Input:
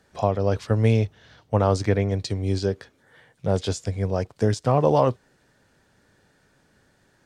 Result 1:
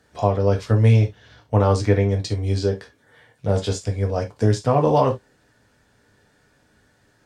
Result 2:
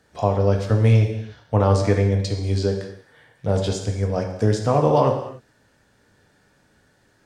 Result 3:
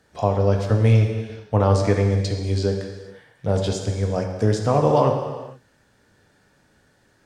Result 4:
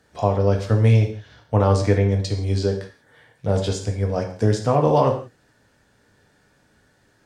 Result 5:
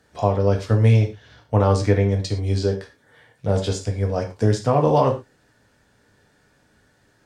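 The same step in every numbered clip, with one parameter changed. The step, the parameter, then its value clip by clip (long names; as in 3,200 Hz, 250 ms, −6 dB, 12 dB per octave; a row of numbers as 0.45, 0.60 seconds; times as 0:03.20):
reverb whose tail is shaped and stops, gate: 90, 320, 500, 200, 140 milliseconds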